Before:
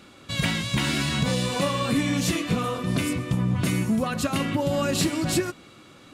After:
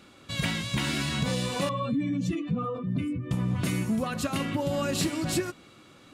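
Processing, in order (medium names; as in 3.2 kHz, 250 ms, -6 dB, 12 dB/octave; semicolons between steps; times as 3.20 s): 1.69–3.31 s: spectral contrast enhancement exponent 1.9; trim -4 dB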